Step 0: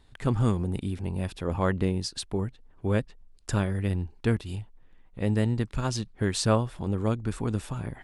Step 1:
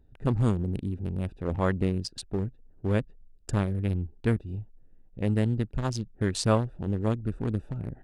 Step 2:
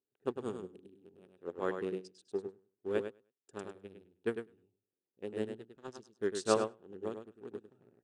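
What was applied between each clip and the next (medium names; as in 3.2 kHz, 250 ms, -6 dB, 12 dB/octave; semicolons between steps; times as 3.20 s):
local Wiener filter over 41 samples
cabinet simulation 350–9400 Hz, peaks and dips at 400 Hz +8 dB, 630 Hz -5 dB, 980 Hz -4 dB, 2.1 kHz -7 dB, 4.6 kHz -5 dB; feedback delay 102 ms, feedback 24%, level -3 dB; upward expansion 2.5:1, over -37 dBFS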